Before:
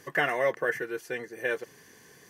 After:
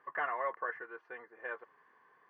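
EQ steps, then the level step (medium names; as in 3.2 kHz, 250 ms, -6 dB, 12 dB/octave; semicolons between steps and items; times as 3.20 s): band-pass filter 1.1 kHz, Q 3.7; distance through air 310 m; +3.0 dB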